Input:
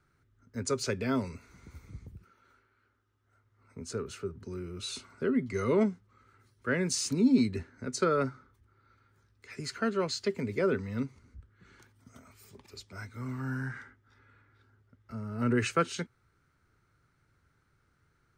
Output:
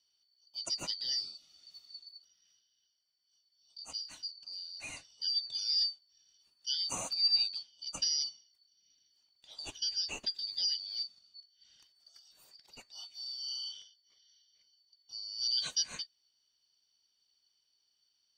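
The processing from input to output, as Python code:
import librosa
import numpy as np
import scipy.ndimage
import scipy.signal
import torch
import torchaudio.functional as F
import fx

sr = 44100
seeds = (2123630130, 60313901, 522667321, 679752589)

y = fx.band_shuffle(x, sr, order='4321')
y = y * 10.0 ** (-5.5 / 20.0)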